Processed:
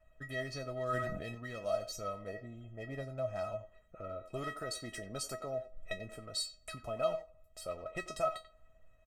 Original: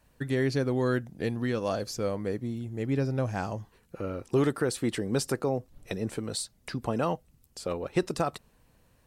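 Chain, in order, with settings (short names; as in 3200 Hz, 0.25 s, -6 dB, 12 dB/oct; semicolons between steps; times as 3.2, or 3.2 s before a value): Wiener smoothing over 9 samples; speakerphone echo 90 ms, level -12 dB; 2.27–3.01 dynamic EQ 710 Hz, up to +7 dB, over -46 dBFS, Q 0.9; in parallel at 0 dB: compressor, threshold -41 dBFS, peak gain reduction 19 dB; on the sum: resonator 640 Hz, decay 0.17 s, harmonics all, mix 100%; on a send at -20.5 dB: reverb RT60 0.70 s, pre-delay 3 ms; 0.84–1.35 on the sum: sustainer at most 31 dB/s; gain +9 dB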